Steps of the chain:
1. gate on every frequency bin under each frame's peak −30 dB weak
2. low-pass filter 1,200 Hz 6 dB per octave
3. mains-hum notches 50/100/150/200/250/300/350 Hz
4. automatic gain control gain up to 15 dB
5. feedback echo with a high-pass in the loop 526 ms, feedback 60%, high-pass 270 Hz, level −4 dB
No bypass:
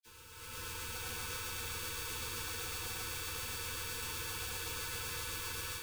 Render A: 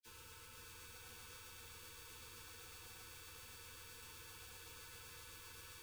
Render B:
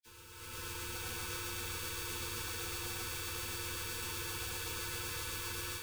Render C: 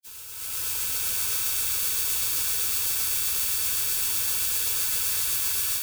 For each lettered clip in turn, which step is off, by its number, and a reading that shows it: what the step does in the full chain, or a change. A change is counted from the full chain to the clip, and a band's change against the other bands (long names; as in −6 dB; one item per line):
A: 4, change in momentary loudness spread −2 LU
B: 3, 250 Hz band +4.5 dB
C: 2, 8 kHz band +13.5 dB